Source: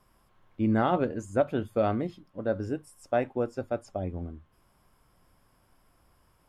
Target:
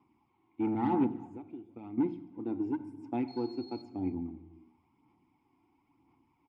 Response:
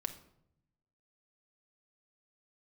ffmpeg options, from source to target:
-filter_complex "[0:a]asplit=3[a][b][c];[a]bandpass=f=300:t=q:w=8,volume=0dB[d];[b]bandpass=f=870:t=q:w=8,volume=-6dB[e];[c]bandpass=f=2.24k:t=q:w=8,volume=-9dB[f];[d][e][f]amix=inputs=3:normalize=0,lowshelf=f=110:g=12,asettb=1/sr,asplit=3[g][h][i];[g]atrim=end=1.064[j];[h]atrim=start=1.06:end=1.98,asetpts=PTS-STARTPTS,afade=t=in:d=0.004:c=qsin,afade=t=out:st=0.916:d=0.004:c=qsin,acompressor=threshold=-50dB:ratio=10[k];[i]atrim=start=1.976[l];[j][k]acrossfade=d=0.004:c1=hsin:c2=qsin[m];[m][l]acrossfade=d=0.004:c1=qsin:c2=hsin,asettb=1/sr,asplit=3[n][o][p];[n]atrim=end=3.284[q];[o]atrim=start=3.28:end=3.82,asetpts=PTS-STARTPTS,afade=t=in:d=0.004:c=qsin,afade=t=out:st=0.536:d=0.004:c=qsin,aeval=exprs='val(0)+0.000891*sin(2*PI*4300*n/s)':c=same[r];[p]atrim=start=3.816[s];[q][r]acrossfade=d=0.004:c1=hsin:c2=qsin[t];[t][s]acrossfade=d=0.004:c1=qsin:c2=hsin,asoftclip=type=tanh:threshold=-31.5dB,highpass=74,asplit=2[u][v];[v]adelay=326.5,volume=-24dB,highshelf=f=4k:g=-7.35[w];[u][w]amix=inputs=2:normalize=0,asplit=2[x][y];[1:a]atrim=start_sample=2205,afade=t=out:st=0.34:d=0.01,atrim=end_sample=15435,asetrate=26460,aresample=44100[z];[y][z]afir=irnorm=-1:irlink=0,volume=1dB[aa];[x][aa]amix=inputs=2:normalize=0,aphaser=in_gain=1:out_gain=1:delay=2.9:decay=0.35:speed=0.98:type=sinusoidal"

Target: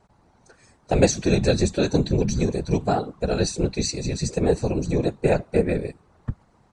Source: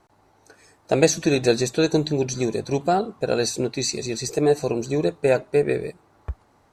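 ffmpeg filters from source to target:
-af "aresample=22050,aresample=44100,equalizer=f=120:t=o:w=0.85:g=12,afftfilt=real='hypot(re,im)*cos(2*PI*random(0))':imag='hypot(re,im)*sin(2*PI*random(1))':win_size=512:overlap=0.75,volume=3.5dB"

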